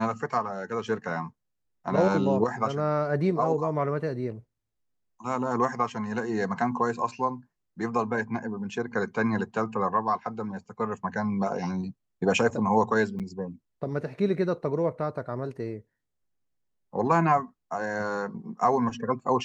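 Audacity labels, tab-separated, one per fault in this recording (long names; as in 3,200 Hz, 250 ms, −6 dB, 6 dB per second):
13.190000	13.200000	drop-out 7.7 ms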